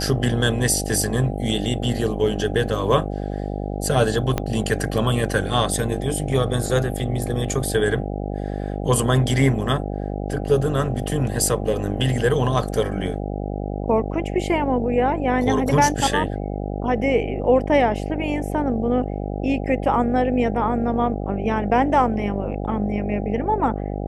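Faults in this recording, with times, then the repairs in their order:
buzz 50 Hz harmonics 16 -27 dBFS
4.38 pop -8 dBFS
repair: de-click; de-hum 50 Hz, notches 16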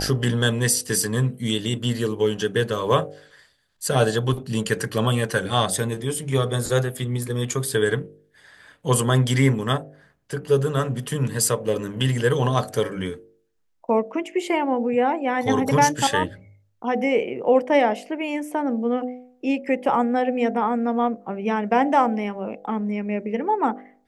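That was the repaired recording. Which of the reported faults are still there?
4.38 pop

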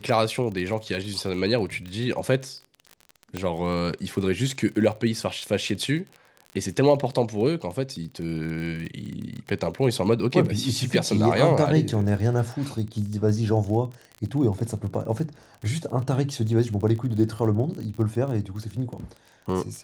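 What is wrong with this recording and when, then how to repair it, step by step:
crackle 33/s -32 dBFS
3.37 pop -15 dBFS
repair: de-click

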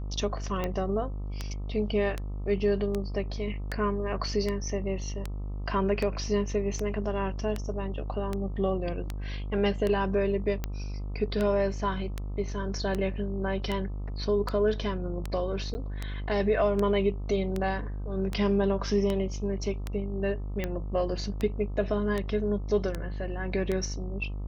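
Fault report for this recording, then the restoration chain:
buzz 50 Hz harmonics 26 -34 dBFS
tick 78 rpm -17 dBFS
15.74–15.75 gap 10 ms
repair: de-click; de-hum 50 Hz, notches 26; interpolate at 15.74, 10 ms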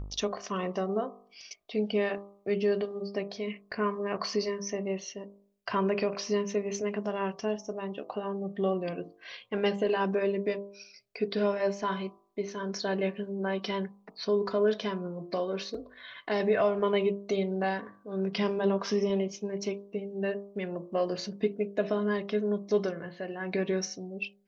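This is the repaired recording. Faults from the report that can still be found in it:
none

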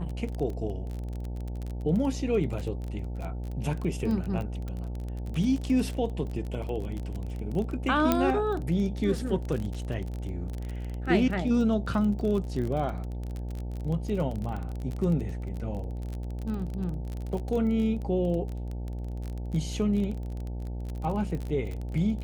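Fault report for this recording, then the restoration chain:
buzz 60 Hz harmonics 15 -34 dBFS
crackle 26/s -32 dBFS
4.68 pop -26 dBFS
8.12 pop -9 dBFS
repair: de-click; de-hum 60 Hz, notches 15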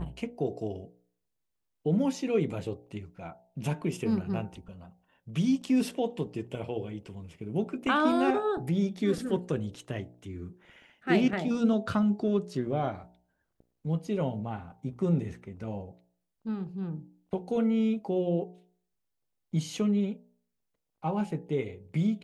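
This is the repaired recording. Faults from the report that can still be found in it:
8.12 pop

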